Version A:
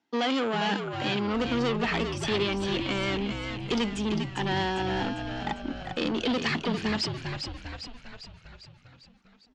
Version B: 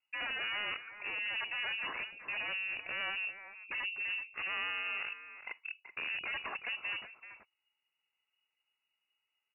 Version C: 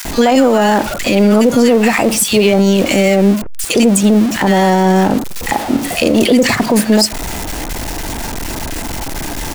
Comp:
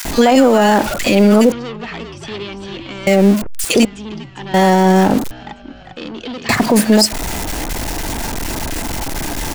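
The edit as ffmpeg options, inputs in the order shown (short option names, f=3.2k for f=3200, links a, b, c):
-filter_complex "[0:a]asplit=3[a][b][c];[2:a]asplit=4[d][e][f][g];[d]atrim=end=1.522[h];[a]atrim=start=1.518:end=3.072[i];[e]atrim=start=3.068:end=3.852[j];[b]atrim=start=3.848:end=4.542[k];[f]atrim=start=4.538:end=5.312[l];[c]atrim=start=5.308:end=6.492[m];[g]atrim=start=6.488[n];[h][i]acrossfade=d=0.004:c1=hsin:c2=hsin[o];[o][j]acrossfade=d=0.004:c1=hsin:c2=hsin[p];[p][k]acrossfade=d=0.004:c1=hsin:c2=hsin[q];[q][l]acrossfade=d=0.004:c1=hsin:c2=hsin[r];[r][m]acrossfade=d=0.004:c1=hsin:c2=hsin[s];[s][n]acrossfade=d=0.004:c1=hsin:c2=hsin"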